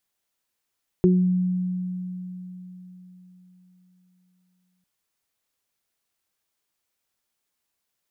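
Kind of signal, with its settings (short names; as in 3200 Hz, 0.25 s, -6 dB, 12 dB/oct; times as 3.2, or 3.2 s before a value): additive tone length 3.80 s, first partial 182 Hz, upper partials 1 dB, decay 4.11 s, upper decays 0.36 s, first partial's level -14.5 dB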